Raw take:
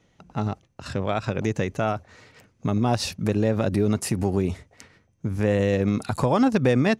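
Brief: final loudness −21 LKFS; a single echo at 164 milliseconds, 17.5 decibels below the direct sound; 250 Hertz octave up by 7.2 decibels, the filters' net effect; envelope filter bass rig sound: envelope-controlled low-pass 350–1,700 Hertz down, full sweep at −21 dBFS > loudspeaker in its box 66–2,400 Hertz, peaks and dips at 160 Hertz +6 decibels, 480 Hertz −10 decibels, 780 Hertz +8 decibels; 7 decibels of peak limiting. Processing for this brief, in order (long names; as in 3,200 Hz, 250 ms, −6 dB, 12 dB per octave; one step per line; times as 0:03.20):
parametric band 250 Hz +8 dB
brickwall limiter −11 dBFS
single-tap delay 164 ms −17.5 dB
envelope-controlled low-pass 350–1,700 Hz down, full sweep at −21 dBFS
loudspeaker in its box 66–2,400 Hz, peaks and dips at 160 Hz +6 dB, 480 Hz −10 dB, 780 Hz +8 dB
level −3.5 dB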